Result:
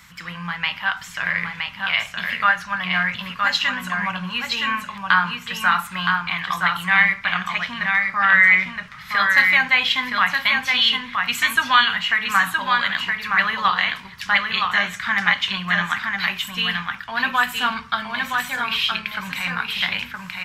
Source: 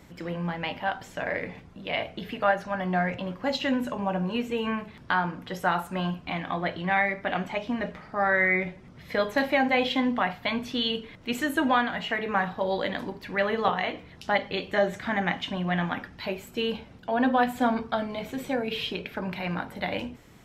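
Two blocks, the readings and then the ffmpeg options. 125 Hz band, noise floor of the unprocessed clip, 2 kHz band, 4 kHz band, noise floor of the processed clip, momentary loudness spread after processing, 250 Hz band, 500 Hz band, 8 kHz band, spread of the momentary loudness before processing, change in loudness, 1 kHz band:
-0.5 dB, -50 dBFS, +12.5 dB, +12.5 dB, -39 dBFS, 10 LU, -5.0 dB, -11.0 dB, +12.5 dB, 10 LU, +8.5 dB, +6.0 dB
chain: -filter_complex "[0:a]firequalizer=gain_entry='entry(200,0);entry(290,-16);entry(620,-10);entry(1100,13)':delay=0.05:min_phase=1,asplit=2[a][b];[b]aecho=0:1:968:0.631[c];[a][c]amix=inputs=2:normalize=0,volume=-2dB"

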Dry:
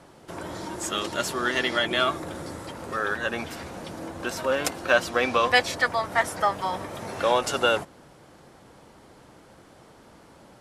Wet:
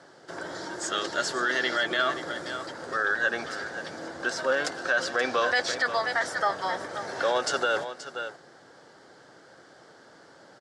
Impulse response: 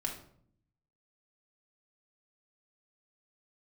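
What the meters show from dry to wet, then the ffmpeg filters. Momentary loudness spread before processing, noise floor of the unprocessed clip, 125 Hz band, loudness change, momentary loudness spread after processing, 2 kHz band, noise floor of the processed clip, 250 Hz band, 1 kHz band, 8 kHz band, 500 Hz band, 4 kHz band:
16 LU, -53 dBFS, -9.5 dB, -2.5 dB, 11 LU, +0.5 dB, -54 dBFS, -5.0 dB, -3.0 dB, -2.0 dB, -3.0 dB, -2.5 dB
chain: -filter_complex "[0:a]highpass=200,equalizer=f=210:t=q:w=4:g=-8,equalizer=f=300:t=q:w=4:g=-3,equalizer=f=1k:t=q:w=4:g=-5,equalizer=f=1.6k:t=q:w=4:g=8,equalizer=f=2.5k:t=q:w=4:g=-9,equalizer=f=4.8k:t=q:w=4:g=5,lowpass=f=7.9k:w=0.5412,lowpass=f=7.9k:w=1.3066,asplit=2[a][b];[b]aecho=0:1:528:0.211[c];[a][c]amix=inputs=2:normalize=0,alimiter=limit=-15.5dB:level=0:latency=1:release=17"

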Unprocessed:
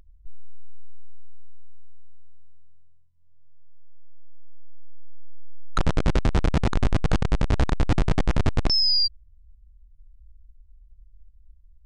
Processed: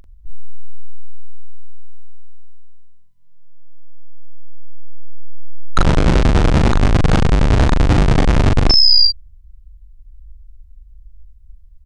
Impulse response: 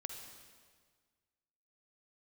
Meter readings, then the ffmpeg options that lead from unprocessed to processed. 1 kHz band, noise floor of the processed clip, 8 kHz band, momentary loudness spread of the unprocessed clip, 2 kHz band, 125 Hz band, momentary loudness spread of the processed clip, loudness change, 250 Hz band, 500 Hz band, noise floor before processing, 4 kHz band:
+10.0 dB, -43 dBFS, n/a, 6 LU, +10.0 dB, +9.5 dB, 7 LU, +10.0 dB, +10.0 dB, +10.0 dB, -54 dBFS, +10.0 dB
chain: -filter_complex "[0:a]asplit=2[a][b];[b]adelay=41,volume=-2.5dB[c];[a][c]amix=inputs=2:normalize=0,volume=8dB"

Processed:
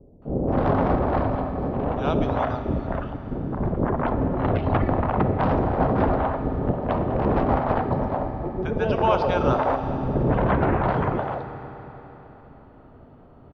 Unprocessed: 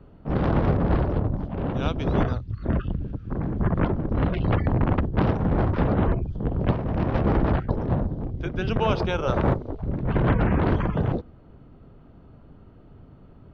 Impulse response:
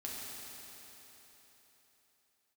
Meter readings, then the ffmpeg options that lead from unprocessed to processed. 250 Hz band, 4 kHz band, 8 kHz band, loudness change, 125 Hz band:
+0.5 dB, -2.0 dB, n/a, +1.0 dB, -2.0 dB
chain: -filter_complex "[0:a]equalizer=f=690:w=0.65:g=13,acrossover=split=540[a][b];[b]adelay=220[c];[a][c]amix=inputs=2:normalize=0,asplit=2[d][e];[1:a]atrim=start_sample=2205[f];[e][f]afir=irnorm=-1:irlink=0,volume=-4.5dB[g];[d][g]amix=inputs=2:normalize=0,volume=-6.5dB"

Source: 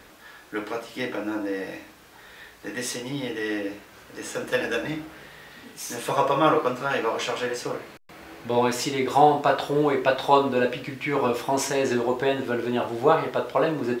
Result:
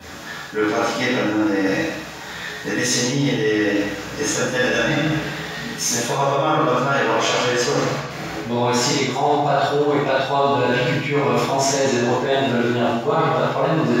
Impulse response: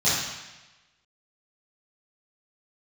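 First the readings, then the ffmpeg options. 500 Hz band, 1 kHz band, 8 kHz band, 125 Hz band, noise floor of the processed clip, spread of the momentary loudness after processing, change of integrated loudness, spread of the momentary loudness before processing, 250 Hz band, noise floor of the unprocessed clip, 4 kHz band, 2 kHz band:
+5.0 dB, +3.5 dB, +11.5 dB, +11.0 dB, -32 dBFS, 8 LU, +5.5 dB, 17 LU, +7.5 dB, -50 dBFS, +9.5 dB, +8.0 dB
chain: -filter_complex "[0:a]bandreject=f=50:t=h:w=6,bandreject=f=100:t=h:w=6,bandreject=f=150:t=h:w=6[a];[1:a]atrim=start_sample=2205[b];[a][b]afir=irnorm=-1:irlink=0,areverse,acompressor=threshold=-16dB:ratio=6,areverse"

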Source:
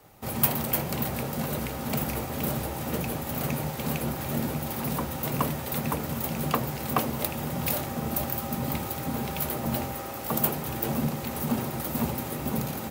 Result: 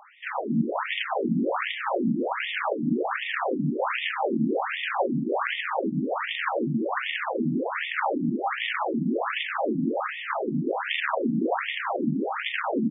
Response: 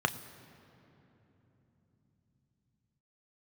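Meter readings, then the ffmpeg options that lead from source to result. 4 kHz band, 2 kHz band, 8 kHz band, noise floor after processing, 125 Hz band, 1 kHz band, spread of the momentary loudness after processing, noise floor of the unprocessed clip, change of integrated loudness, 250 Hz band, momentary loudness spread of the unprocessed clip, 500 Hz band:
+5.0 dB, +10.0 dB, under -40 dB, -34 dBFS, -4.5 dB, +5.0 dB, 2 LU, -35 dBFS, +2.0 dB, +4.0 dB, 5 LU, +5.5 dB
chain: -filter_complex "[0:a]acontrast=68,alimiter=limit=-12.5dB:level=0:latency=1:release=110,aeval=exprs='(mod(7.5*val(0)+1,2)-1)/7.5':c=same,asplit=2[a][b];[b]adelay=186,lowpass=f=3.9k:p=1,volume=-4dB,asplit=2[c][d];[d]adelay=186,lowpass=f=3.9k:p=1,volume=0.54,asplit=2[e][f];[f]adelay=186,lowpass=f=3.9k:p=1,volume=0.54,asplit=2[g][h];[h]adelay=186,lowpass=f=3.9k:p=1,volume=0.54,asplit=2[i][j];[j]adelay=186,lowpass=f=3.9k:p=1,volume=0.54,asplit=2[k][l];[l]adelay=186,lowpass=f=3.9k:p=1,volume=0.54,asplit=2[m][n];[n]adelay=186,lowpass=f=3.9k:p=1,volume=0.54[o];[c][e][g][i][k][m][o]amix=inputs=7:normalize=0[p];[a][p]amix=inputs=2:normalize=0,afftfilt=real='re*between(b*sr/1024,220*pow(2600/220,0.5+0.5*sin(2*PI*1.3*pts/sr))/1.41,220*pow(2600/220,0.5+0.5*sin(2*PI*1.3*pts/sr))*1.41)':imag='im*between(b*sr/1024,220*pow(2600/220,0.5+0.5*sin(2*PI*1.3*pts/sr))/1.41,220*pow(2600/220,0.5+0.5*sin(2*PI*1.3*pts/sr))*1.41)':win_size=1024:overlap=0.75,volume=6dB"

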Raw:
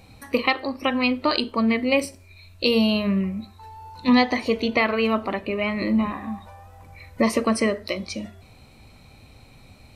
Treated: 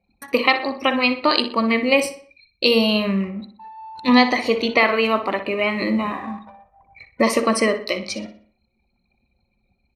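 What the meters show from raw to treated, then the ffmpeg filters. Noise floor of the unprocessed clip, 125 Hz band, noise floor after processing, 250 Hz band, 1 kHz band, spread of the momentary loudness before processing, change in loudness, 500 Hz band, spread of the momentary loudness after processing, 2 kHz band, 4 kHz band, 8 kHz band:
-50 dBFS, -0.5 dB, -69 dBFS, +1.0 dB, +5.0 dB, 15 LU, +3.5 dB, +4.0 dB, 14 LU, +5.0 dB, +5.0 dB, +5.0 dB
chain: -filter_complex "[0:a]highpass=f=320:p=1,anlmdn=0.1,asplit=2[a][b];[b]adelay=61,lowpass=f=4.5k:p=1,volume=-10.5dB,asplit=2[c][d];[d]adelay=61,lowpass=f=4.5k:p=1,volume=0.44,asplit=2[e][f];[f]adelay=61,lowpass=f=4.5k:p=1,volume=0.44,asplit=2[g][h];[h]adelay=61,lowpass=f=4.5k:p=1,volume=0.44,asplit=2[i][j];[j]adelay=61,lowpass=f=4.5k:p=1,volume=0.44[k];[c][e][g][i][k]amix=inputs=5:normalize=0[l];[a][l]amix=inputs=2:normalize=0,volume=5dB"

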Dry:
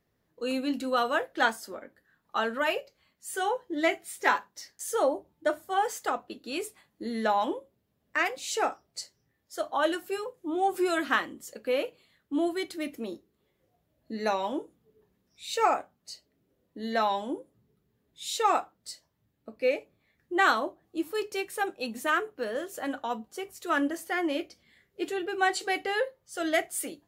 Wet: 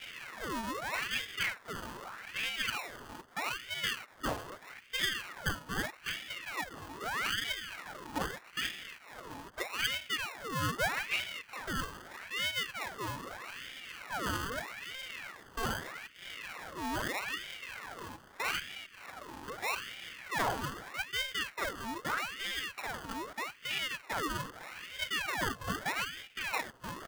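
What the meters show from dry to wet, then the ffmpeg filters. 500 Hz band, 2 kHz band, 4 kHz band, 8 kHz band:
-14.0 dB, -3.0 dB, +2.0 dB, -4.0 dB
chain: -af "aeval=exprs='val(0)+0.5*0.0282*sgn(val(0))':c=same,equalizer=f=960:t=o:w=0.63:g=-10,aecho=1:1:5.1:0.4,areverse,acompressor=mode=upward:threshold=-32dB:ratio=2.5,areverse,highpass=f=160:t=q:w=0.5412,highpass=f=160:t=q:w=1.307,lowpass=f=2.3k:t=q:w=0.5176,lowpass=f=2.3k:t=q:w=0.7071,lowpass=f=2.3k:t=q:w=1.932,afreqshift=90,acrusher=samples=28:mix=1:aa=0.000001,asoftclip=type=tanh:threshold=-13.5dB,aeval=exprs='val(0)*sin(2*PI*1600*n/s+1600*0.65/0.8*sin(2*PI*0.8*n/s))':c=same,volume=-4.5dB"

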